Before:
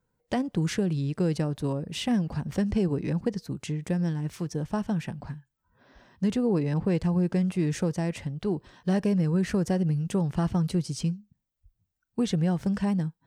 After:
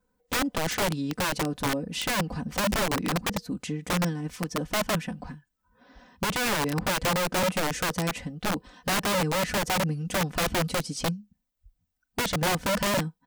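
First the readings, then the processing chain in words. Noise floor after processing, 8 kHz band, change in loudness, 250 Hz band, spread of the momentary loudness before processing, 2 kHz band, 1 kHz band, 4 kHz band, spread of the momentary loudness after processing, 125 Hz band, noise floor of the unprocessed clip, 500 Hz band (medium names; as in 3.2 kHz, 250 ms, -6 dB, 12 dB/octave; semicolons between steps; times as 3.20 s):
-79 dBFS, +11.5 dB, +0.5 dB, -5.0 dB, 7 LU, +12.5 dB, +10.0 dB, +10.5 dB, 7 LU, -5.0 dB, -82 dBFS, +1.5 dB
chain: comb 4 ms, depth 89%; integer overflow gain 21 dB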